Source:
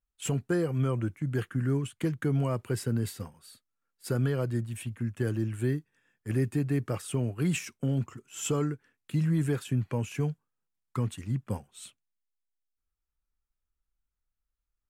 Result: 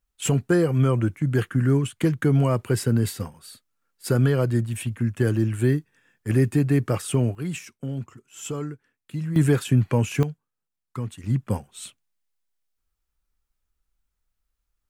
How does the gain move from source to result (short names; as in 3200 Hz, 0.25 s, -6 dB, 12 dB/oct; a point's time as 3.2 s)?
+8 dB
from 7.35 s -2 dB
from 9.36 s +9.5 dB
from 10.23 s -0.5 dB
from 11.24 s +7.5 dB